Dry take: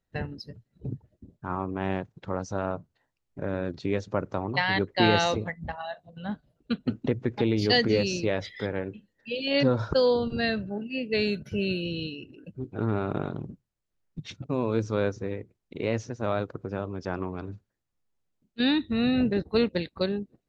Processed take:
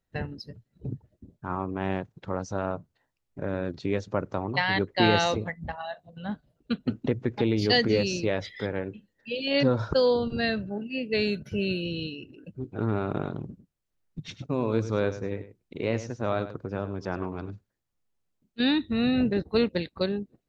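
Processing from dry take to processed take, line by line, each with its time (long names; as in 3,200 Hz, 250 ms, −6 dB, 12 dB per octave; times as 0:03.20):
0:13.47–0:17.51: single-tap delay 101 ms −13 dB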